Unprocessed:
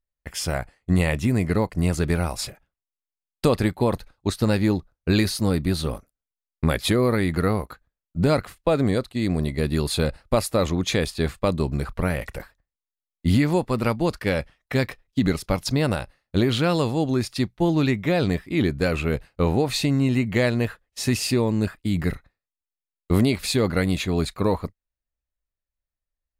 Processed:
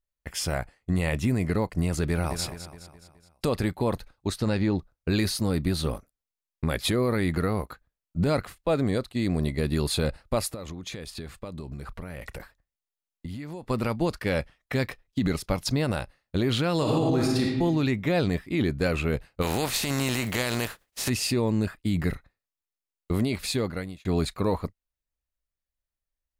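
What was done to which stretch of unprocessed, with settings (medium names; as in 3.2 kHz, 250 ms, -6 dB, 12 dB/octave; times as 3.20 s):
2.02–2.44 s: echo throw 210 ms, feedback 50%, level -12 dB
4.37–4.77 s: low-pass 9.7 kHz -> 3.8 kHz
10.54–13.70 s: compression 12:1, threshold -31 dBFS
16.76–17.42 s: reverb throw, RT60 1.1 s, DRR -2 dB
19.41–21.08 s: spectral contrast reduction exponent 0.53
23.29–24.05 s: fade out
whole clip: peak limiter -13.5 dBFS; trim -1.5 dB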